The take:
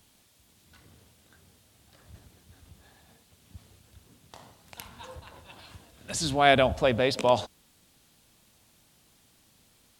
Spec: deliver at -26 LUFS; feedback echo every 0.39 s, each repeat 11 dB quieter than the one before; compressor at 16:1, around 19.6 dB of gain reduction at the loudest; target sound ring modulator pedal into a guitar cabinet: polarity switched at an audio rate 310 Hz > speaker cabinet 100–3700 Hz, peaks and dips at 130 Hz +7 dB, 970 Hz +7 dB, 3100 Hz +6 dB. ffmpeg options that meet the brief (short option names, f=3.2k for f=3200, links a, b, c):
-af "acompressor=threshold=-35dB:ratio=16,aecho=1:1:390|780|1170:0.282|0.0789|0.0221,aeval=exprs='val(0)*sgn(sin(2*PI*310*n/s))':c=same,highpass=100,equalizer=f=130:t=q:w=4:g=7,equalizer=f=970:t=q:w=4:g=7,equalizer=f=3.1k:t=q:w=4:g=6,lowpass=f=3.7k:w=0.5412,lowpass=f=3.7k:w=1.3066,volume=16dB"